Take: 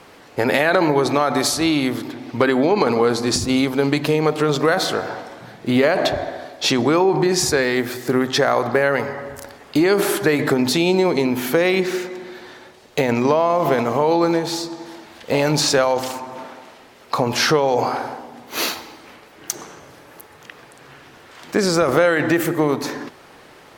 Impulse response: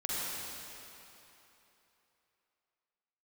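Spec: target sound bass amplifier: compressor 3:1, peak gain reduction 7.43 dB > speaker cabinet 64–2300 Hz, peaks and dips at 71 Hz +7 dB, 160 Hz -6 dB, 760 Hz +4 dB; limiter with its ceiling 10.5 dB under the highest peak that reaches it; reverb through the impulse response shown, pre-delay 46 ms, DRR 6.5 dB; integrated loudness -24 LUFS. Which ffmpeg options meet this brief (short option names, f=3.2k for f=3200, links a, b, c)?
-filter_complex "[0:a]alimiter=limit=-14dB:level=0:latency=1,asplit=2[a][b];[1:a]atrim=start_sample=2205,adelay=46[c];[b][c]afir=irnorm=-1:irlink=0,volume=-12.5dB[d];[a][d]amix=inputs=2:normalize=0,acompressor=threshold=-26dB:ratio=3,highpass=f=64:w=0.5412,highpass=f=64:w=1.3066,equalizer=f=71:t=q:w=4:g=7,equalizer=f=160:t=q:w=4:g=-6,equalizer=f=760:t=q:w=4:g=4,lowpass=f=2.3k:w=0.5412,lowpass=f=2.3k:w=1.3066,volume=5.5dB"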